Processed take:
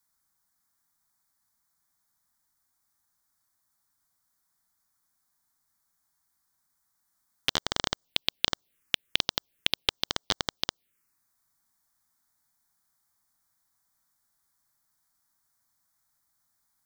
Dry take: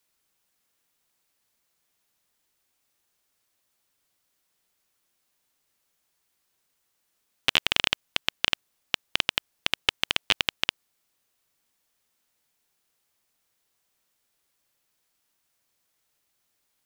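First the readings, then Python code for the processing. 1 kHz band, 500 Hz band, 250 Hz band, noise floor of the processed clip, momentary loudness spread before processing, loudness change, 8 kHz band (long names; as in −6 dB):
−2.0 dB, 0.0 dB, +0.5 dB, −77 dBFS, 6 LU, −3.5 dB, 0.0 dB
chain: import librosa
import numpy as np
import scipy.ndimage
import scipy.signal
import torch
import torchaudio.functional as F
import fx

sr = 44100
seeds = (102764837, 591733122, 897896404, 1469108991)

y = fx.env_phaser(x, sr, low_hz=470.0, high_hz=2600.0, full_db=-28.0)
y = fx.rider(y, sr, range_db=10, speed_s=2.0)
y = y * 10.0 ** (2.0 / 20.0)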